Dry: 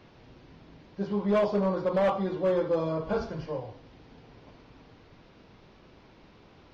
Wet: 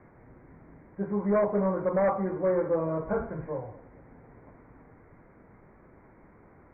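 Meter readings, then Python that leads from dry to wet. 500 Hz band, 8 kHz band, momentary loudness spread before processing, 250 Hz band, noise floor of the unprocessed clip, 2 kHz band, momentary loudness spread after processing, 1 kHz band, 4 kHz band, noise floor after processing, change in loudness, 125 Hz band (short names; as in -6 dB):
0.0 dB, n/a, 12 LU, 0.0 dB, -56 dBFS, -0.5 dB, 12 LU, 0.0 dB, under -35 dB, -57 dBFS, 0.0 dB, 0.0 dB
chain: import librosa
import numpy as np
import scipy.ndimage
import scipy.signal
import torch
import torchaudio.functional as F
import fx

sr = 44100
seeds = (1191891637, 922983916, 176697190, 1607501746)

y = scipy.signal.sosfilt(scipy.signal.butter(16, 2200.0, 'lowpass', fs=sr, output='sos'), x)
y = fx.echo_feedback(y, sr, ms=221, feedback_pct=51, wet_db=-21.5)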